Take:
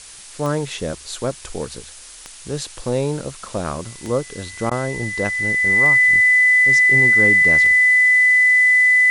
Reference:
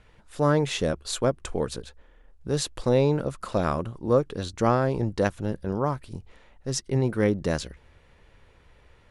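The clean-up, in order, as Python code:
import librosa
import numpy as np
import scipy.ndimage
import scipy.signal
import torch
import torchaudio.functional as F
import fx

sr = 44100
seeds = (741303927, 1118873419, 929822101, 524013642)

y = fx.fix_declick_ar(x, sr, threshold=10.0)
y = fx.notch(y, sr, hz=2000.0, q=30.0)
y = fx.fix_interpolate(y, sr, at_s=(4.7,), length_ms=12.0)
y = fx.noise_reduce(y, sr, print_start_s=1.9, print_end_s=2.4, reduce_db=17.0)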